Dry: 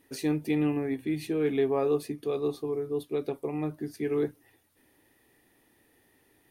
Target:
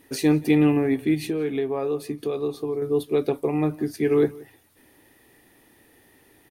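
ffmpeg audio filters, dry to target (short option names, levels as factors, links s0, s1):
-filter_complex "[0:a]asettb=1/sr,asplit=3[s0][s1][s2];[s0]atrim=end=1.144[s3];[s1]atrim=start=1.14:end=2.82,asetpts=PTS-STARTPTS,afade=t=in:d=0.004:c=qsin,afade=t=out:st=1.676:d=0.004:c=qsin,acompressor=threshold=0.02:ratio=3[s4];[s2]atrim=start=2.816[s5];[s3][s4]acrossfade=d=0.004:c1=hsin:c2=qsin[s6];[s6][s5]acrossfade=d=0.004:c1=qsin:c2=hsin,asplit=2[s7][s8];[s8]adelay=174.9,volume=0.0794,highshelf=f=4000:g=-3.94[s9];[s7][s9]amix=inputs=2:normalize=0,volume=2.66"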